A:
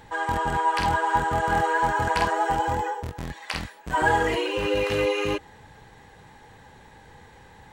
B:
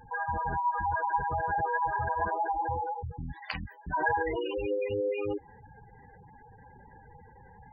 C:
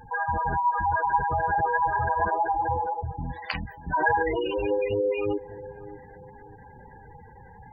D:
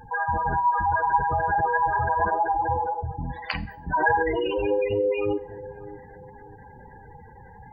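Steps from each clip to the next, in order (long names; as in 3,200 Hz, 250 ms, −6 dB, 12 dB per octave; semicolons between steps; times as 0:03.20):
gate on every frequency bin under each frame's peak −10 dB strong; in parallel at −1.5 dB: downward compressor, threshold −33 dBFS, peak gain reduction 14.5 dB; on the sum: level −7 dB
bucket-brigade delay 590 ms, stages 4,096, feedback 34%, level −16 dB; level +5 dB
four-comb reverb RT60 0.48 s, combs from 31 ms, DRR 17 dB; level +1.5 dB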